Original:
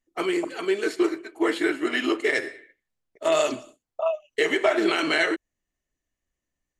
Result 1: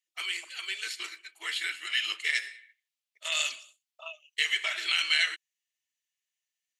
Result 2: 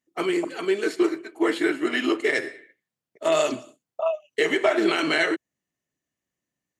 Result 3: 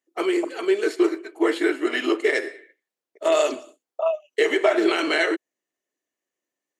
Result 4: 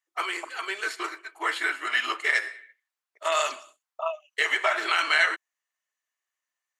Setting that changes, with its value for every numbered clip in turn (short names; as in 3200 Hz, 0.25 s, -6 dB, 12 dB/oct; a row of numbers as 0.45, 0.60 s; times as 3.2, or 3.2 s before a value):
resonant high-pass, frequency: 2800, 140, 370, 1100 Hz